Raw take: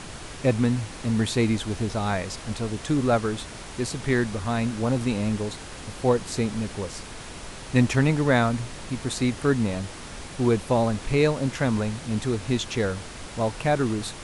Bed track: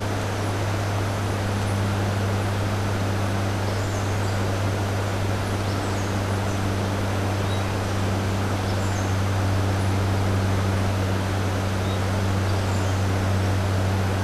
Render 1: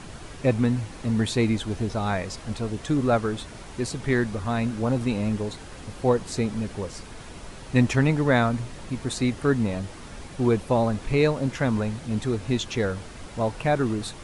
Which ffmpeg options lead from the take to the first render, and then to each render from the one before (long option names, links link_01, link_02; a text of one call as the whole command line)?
ffmpeg -i in.wav -af "afftdn=noise_reduction=6:noise_floor=-40" out.wav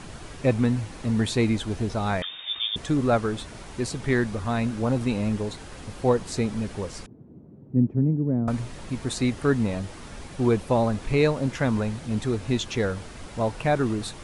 ffmpeg -i in.wav -filter_complex "[0:a]asettb=1/sr,asplit=3[link_01][link_02][link_03];[link_01]atrim=end=2.224[link_04];[link_02]atrim=start=2.22:end=2.76,asetpts=PTS-STARTPTS,afade=type=in:duration=0.004:curve=qsin,afade=type=out:start_time=0.536:duration=0.004:curve=qsin,lowpass=frequency=3100:width_type=q:width=0.5098,lowpass=frequency=3100:width_type=q:width=0.6013,lowpass=frequency=3100:width_type=q:width=0.9,lowpass=frequency=3100:width_type=q:width=2.563,afreqshift=-3700[link_05];[link_03]atrim=start=2.756[link_06];[link_04][link_05]acrossfade=duration=0.004:curve1=hsin:curve2=qsin[link_07];[link_07][link_06]acrossfade=duration=0.004:curve1=qsin:curve2=hsin,asettb=1/sr,asplit=3[link_08][link_09][link_10];[link_08]atrim=end=7.064[link_11];[link_09]atrim=start=7.06:end=8.48,asetpts=PTS-STARTPTS,afade=type=in:duration=0.004:curve=qsin,afade=type=out:start_time=1.416:duration=0.004:curve=qsin,asuperpass=centerf=200:order=4:qfactor=0.87[link_12];[link_10]atrim=start=8.476[link_13];[link_11][link_12]acrossfade=duration=0.004:curve1=hsin:curve2=qsin[link_14];[link_14][link_13]acrossfade=duration=0.004:curve1=qsin:curve2=hsin" out.wav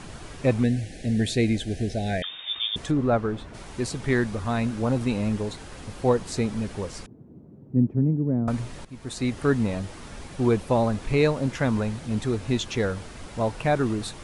ffmpeg -i in.wav -filter_complex "[0:a]asettb=1/sr,asplit=3[link_01][link_02][link_03];[link_01]atrim=end=0.634[link_04];[link_02]atrim=start=0.63:end=2.24,asetpts=PTS-STARTPTS,afade=type=in:duration=0.004:curve=qsin,afade=type=out:start_time=1.606:duration=0.004:curve=qsin,asuperstop=centerf=1100:order=12:qfactor=1.4[link_05];[link_03]atrim=start=2.236[link_06];[link_04][link_05]acrossfade=duration=0.004:curve1=hsin:curve2=qsin[link_07];[link_07][link_06]acrossfade=duration=0.004:curve1=qsin:curve2=hsin,asplit=3[link_08][link_09][link_10];[link_08]afade=type=out:start_time=2.9:duration=0.02[link_11];[link_09]lowpass=frequency=1500:poles=1,afade=type=in:start_time=2.9:duration=0.02,afade=type=out:start_time=3.53:duration=0.02[link_12];[link_10]afade=type=in:start_time=3.53:duration=0.02[link_13];[link_11][link_12][link_13]amix=inputs=3:normalize=0,asplit=2[link_14][link_15];[link_14]atrim=end=8.85,asetpts=PTS-STARTPTS,afade=type=out:start_time=8.846:duration=0.004:curve=hsin:silence=0.158489[link_16];[link_15]atrim=start=8.85,asetpts=PTS-STARTPTS,afade=type=in:duration=0.56:silence=0.158489[link_17];[link_16][link_17]concat=n=2:v=0:a=1" out.wav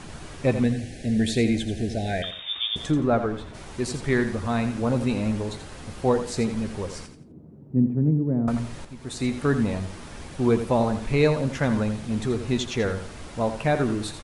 ffmpeg -i in.wav -filter_complex "[0:a]asplit=2[link_01][link_02];[link_02]adelay=13,volume=-13dB[link_03];[link_01][link_03]amix=inputs=2:normalize=0,aecho=1:1:85|170|255:0.316|0.0917|0.0266" out.wav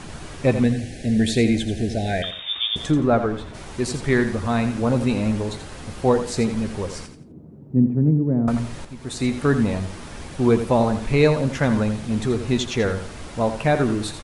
ffmpeg -i in.wav -af "volume=3.5dB" out.wav